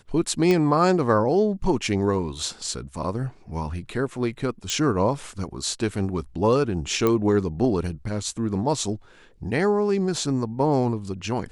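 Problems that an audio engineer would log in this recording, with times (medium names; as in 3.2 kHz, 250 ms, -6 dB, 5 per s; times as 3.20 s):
0.51 s: pop -10 dBFS
4.70 s: pop -13 dBFS
7.07 s: pop -9 dBFS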